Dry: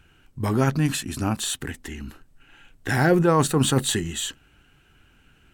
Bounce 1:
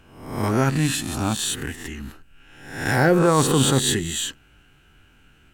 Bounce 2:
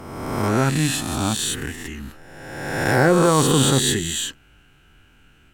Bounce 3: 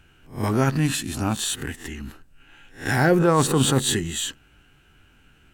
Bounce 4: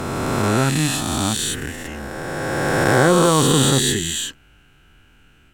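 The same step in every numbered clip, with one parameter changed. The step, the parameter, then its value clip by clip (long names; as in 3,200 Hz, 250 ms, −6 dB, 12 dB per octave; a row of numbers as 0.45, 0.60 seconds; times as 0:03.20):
peak hold with a rise ahead of every peak, rising 60 dB in: 0.69, 1.44, 0.31, 3.09 seconds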